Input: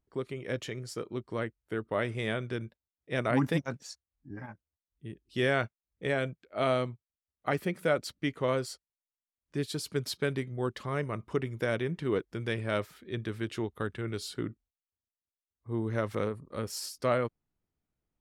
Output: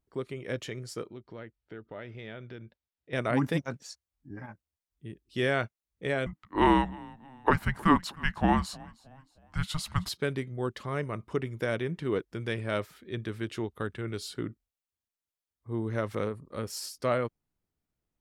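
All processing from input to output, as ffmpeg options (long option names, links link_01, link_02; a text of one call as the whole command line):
ffmpeg -i in.wav -filter_complex "[0:a]asettb=1/sr,asplit=3[link_01][link_02][link_03];[link_01]atrim=end=1.084[link_04];[link_02]atrim=start=1.08:end=3.13,asetpts=PTS-STARTPTS,afade=type=in:duration=0.004:curve=qsin,afade=type=out:start_time=2.046:duration=0.004:curve=qsin,lowpass=frequency=5000:width=0.5412,lowpass=frequency=5000:width=1.3066,bandreject=frequency=1100:width=8.9,acompressor=threshold=-47dB:ratio=2:attack=3.2:release=140:knee=1:detection=peak[link_05];[link_03]atrim=start=3.126[link_06];[link_04][link_05]acrossfade=duration=0.004:curve1=hsin:curve2=qsin[link_07];[link_07][link_06]acrossfade=duration=0.004:curve1=qsin:curve2=hsin,asettb=1/sr,asplit=3[link_08][link_09][link_10];[link_08]atrim=end=6.264[link_11];[link_09]atrim=start=6.26:end=10.09,asetpts=PTS-STARTPTS,afade=type=in:duration=0.004:curve=qsin,afade=type=out:start_time=3.826:duration=0.004:curve=qsin,equalizer=frequency=1300:width_type=o:width=1.9:gain=10.5,asplit=4[link_12][link_13][link_14][link_15];[link_13]adelay=312,afreqshift=-42,volume=-22.5dB[link_16];[link_14]adelay=624,afreqshift=-84,volume=-29.6dB[link_17];[link_15]adelay=936,afreqshift=-126,volume=-36.8dB[link_18];[link_12][link_16][link_17][link_18]amix=inputs=4:normalize=0,atrim=end_sample=168903,afreqshift=-310[link_19];[link_10]atrim=start=10.086[link_20];[link_11][link_19]acrossfade=duration=0.004:curve1=hsin:curve2=qsin[link_21];[link_21][link_20]acrossfade=duration=0.004:curve1=qsin:curve2=hsin" out.wav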